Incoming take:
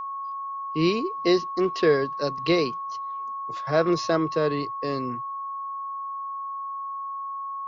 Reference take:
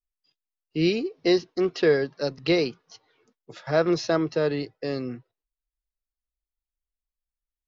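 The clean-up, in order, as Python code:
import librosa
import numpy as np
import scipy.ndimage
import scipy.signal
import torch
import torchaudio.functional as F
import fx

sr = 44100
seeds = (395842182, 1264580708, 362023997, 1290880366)

y = fx.notch(x, sr, hz=1100.0, q=30.0)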